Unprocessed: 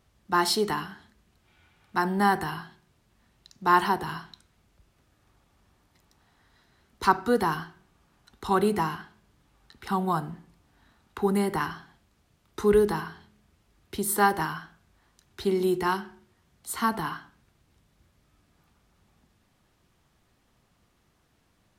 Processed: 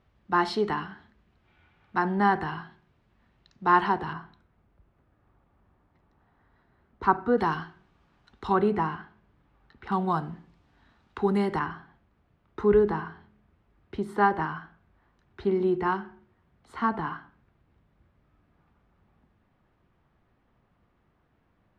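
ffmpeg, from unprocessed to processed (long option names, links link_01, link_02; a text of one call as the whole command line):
ffmpeg -i in.wav -af "asetnsamples=nb_out_samples=441:pad=0,asendcmd='4.13 lowpass f 1500;7.38 lowpass f 3600;8.52 lowpass f 2100;9.92 lowpass f 4000;11.59 lowpass f 1900',lowpass=2700" out.wav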